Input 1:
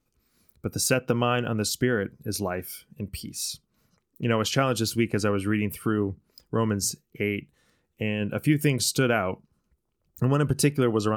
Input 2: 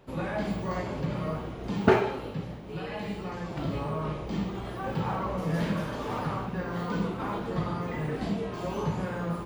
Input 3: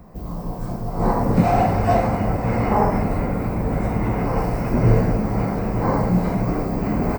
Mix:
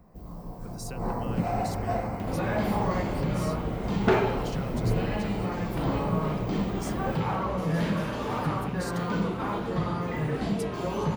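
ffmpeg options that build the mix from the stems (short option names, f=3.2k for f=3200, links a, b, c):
-filter_complex "[0:a]acrossover=split=150[a][b];[b]acompressor=threshold=-25dB:ratio=6[c];[a][c]amix=inputs=2:normalize=0,volume=-14dB[d];[1:a]acompressor=mode=upward:threshold=-35dB:ratio=2.5,asoftclip=type=tanh:threshold=-18dB,adelay=2200,volume=2.5dB[e];[2:a]volume=-11.5dB[f];[d][e][f]amix=inputs=3:normalize=0"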